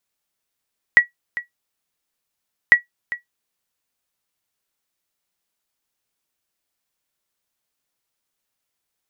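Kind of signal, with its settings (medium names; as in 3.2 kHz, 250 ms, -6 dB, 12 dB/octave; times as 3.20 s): sonar ping 1.93 kHz, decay 0.13 s, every 1.75 s, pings 2, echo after 0.40 s, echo -16 dB -1 dBFS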